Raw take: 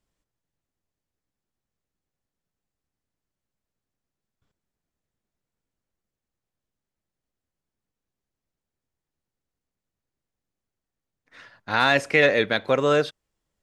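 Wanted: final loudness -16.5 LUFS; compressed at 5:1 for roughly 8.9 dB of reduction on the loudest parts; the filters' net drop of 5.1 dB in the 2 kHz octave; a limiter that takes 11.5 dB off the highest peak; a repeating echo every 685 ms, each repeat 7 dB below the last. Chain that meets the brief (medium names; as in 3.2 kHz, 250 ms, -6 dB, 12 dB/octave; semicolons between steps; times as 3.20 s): peaking EQ 2 kHz -6.5 dB; compression 5:1, threshold -26 dBFS; peak limiter -25 dBFS; feedback delay 685 ms, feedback 45%, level -7 dB; trim +20.5 dB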